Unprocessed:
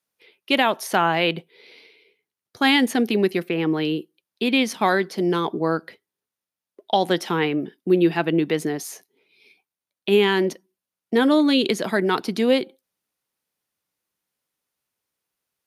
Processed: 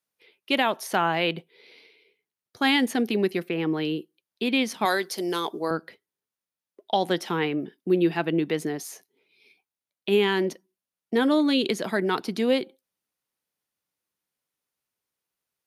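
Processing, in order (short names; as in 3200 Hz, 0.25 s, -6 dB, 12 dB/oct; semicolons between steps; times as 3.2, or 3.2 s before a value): 4.85–5.71 tone controls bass -12 dB, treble +13 dB; gain -4 dB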